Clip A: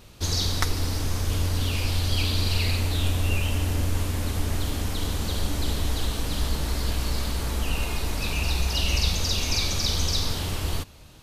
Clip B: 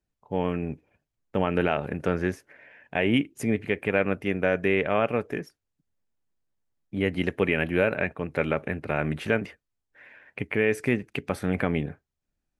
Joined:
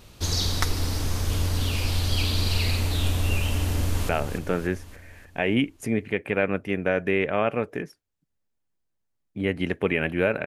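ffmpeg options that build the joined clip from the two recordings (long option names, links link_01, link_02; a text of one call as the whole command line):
ffmpeg -i cue0.wav -i cue1.wav -filter_complex "[0:a]apad=whole_dur=10.46,atrim=end=10.46,atrim=end=4.092[link_01];[1:a]atrim=start=1.658:end=8.03[link_02];[link_01][link_02]acrossfade=duration=0.004:curve1=hsin:curve2=hsin,asplit=2[link_03][link_04];[link_04]afade=type=in:start_time=3.72:duration=0.01,afade=type=out:start_time=4.09:duration=0.01,aecho=0:1:290|580|870|1160|1450|1740|2030:0.421697|0.231933|0.127563|0.0701598|0.0385879|0.0212233|0.0116728[link_05];[link_03][link_05]amix=inputs=2:normalize=0" out.wav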